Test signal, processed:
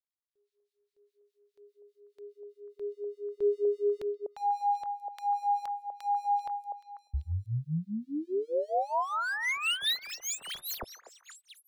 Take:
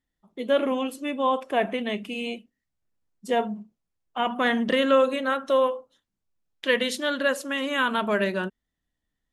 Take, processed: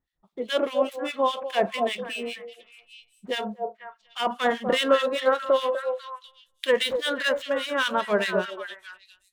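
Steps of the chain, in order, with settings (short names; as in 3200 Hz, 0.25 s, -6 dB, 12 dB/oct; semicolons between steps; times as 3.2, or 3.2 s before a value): median filter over 9 samples; fifteen-band EQ 100 Hz -3 dB, 250 Hz -7 dB, 4000 Hz +7 dB; delay with a stepping band-pass 0.246 s, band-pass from 560 Hz, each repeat 1.4 oct, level -5 dB; harmonic tremolo 4.9 Hz, depth 100%, crossover 1500 Hz; gain +5 dB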